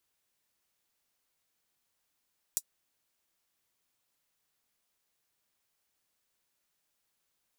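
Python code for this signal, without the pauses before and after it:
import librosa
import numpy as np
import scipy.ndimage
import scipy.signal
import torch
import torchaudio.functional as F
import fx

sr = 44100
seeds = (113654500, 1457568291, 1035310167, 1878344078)

y = fx.drum_hat(sr, length_s=0.24, from_hz=6800.0, decay_s=0.06)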